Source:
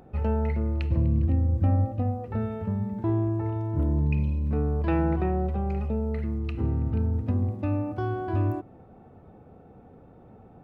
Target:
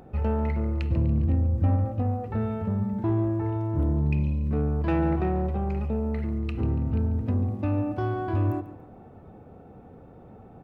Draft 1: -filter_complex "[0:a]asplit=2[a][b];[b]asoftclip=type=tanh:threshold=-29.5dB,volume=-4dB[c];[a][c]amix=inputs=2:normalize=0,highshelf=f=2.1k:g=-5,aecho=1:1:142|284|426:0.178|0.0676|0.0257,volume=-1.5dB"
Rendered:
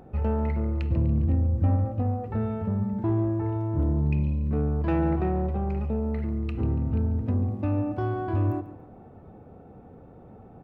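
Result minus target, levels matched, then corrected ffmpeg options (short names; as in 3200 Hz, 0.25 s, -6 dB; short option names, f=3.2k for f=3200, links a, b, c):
4000 Hz band -3.5 dB
-filter_complex "[0:a]asplit=2[a][b];[b]asoftclip=type=tanh:threshold=-29.5dB,volume=-4dB[c];[a][c]amix=inputs=2:normalize=0,aecho=1:1:142|284|426:0.178|0.0676|0.0257,volume=-1.5dB"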